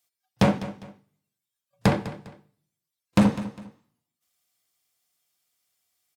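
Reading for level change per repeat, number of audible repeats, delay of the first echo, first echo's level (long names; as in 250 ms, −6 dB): −10.0 dB, 2, 202 ms, −15.0 dB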